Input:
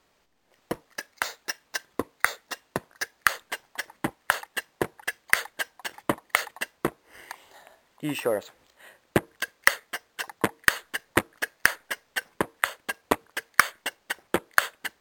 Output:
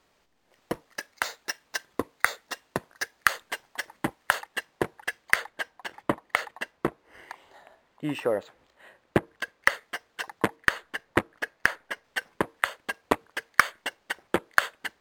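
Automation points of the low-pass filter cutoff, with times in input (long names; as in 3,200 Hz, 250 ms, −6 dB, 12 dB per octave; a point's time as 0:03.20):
low-pass filter 6 dB per octave
11,000 Hz
from 0:04.39 5,300 Hz
from 0:05.36 2,400 Hz
from 0:09.74 4,600 Hz
from 0:10.56 2,200 Hz
from 0:12.04 4,800 Hz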